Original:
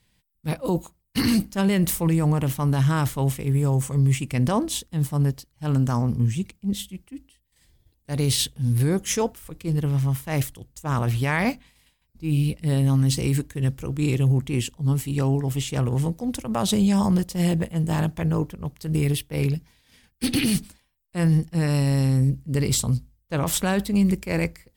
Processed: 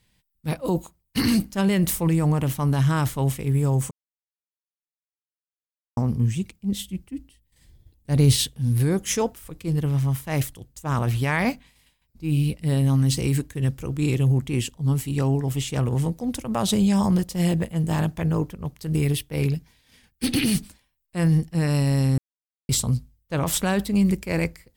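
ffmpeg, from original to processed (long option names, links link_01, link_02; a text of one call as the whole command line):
ffmpeg -i in.wav -filter_complex "[0:a]asettb=1/sr,asplit=3[link_01][link_02][link_03];[link_01]atrim=end=6.884[link_04];[link_02]atrim=start=6.88:end=8.37,asetpts=PTS-STARTPTS,afade=type=in:duration=0.004:curve=qsin,afade=type=out:start_time=1.486:duration=0.004:curve=qsin,lowshelf=frequency=330:gain=8[link_05];[link_03]atrim=start=8.366[link_06];[link_04][link_05]acrossfade=duration=0.004:curve1=hsin:curve2=qsin[link_07];[link_07][link_06]acrossfade=duration=0.004:curve1=qsin:curve2=hsin,asplit=5[link_08][link_09][link_10][link_11][link_12];[link_08]atrim=end=3.91,asetpts=PTS-STARTPTS,afade=type=out:start_time=3.906:duration=0.004:curve=hsin[link_13];[link_09]atrim=start=3.91:end=5.97,asetpts=PTS-STARTPTS,volume=0[link_14];[link_10]atrim=start=5.97:end=22.18,asetpts=PTS-STARTPTS,afade=type=in:duration=0.004:curve=hsin,afade=type=out:start_time=16.206:duration=0.004:curve=hsin[link_15];[link_11]atrim=start=22.18:end=22.69,asetpts=PTS-STARTPTS,volume=0[link_16];[link_12]atrim=start=22.69,asetpts=PTS-STARTPTS,afade=type=in:duration=0.004:curve=hsin[link_17];[link_13][link_14][link_15][link_16][link_17]concat=n=5:v=0:a=1" out.wav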